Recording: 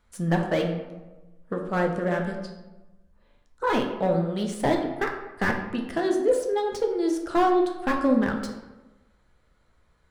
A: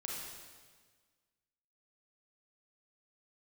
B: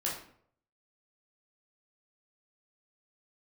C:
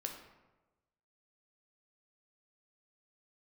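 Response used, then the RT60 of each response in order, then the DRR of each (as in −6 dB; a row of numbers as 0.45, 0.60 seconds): C; 1.5, 0.60, 1.1 seconds; −3.5, −5.0, 2.0 decibels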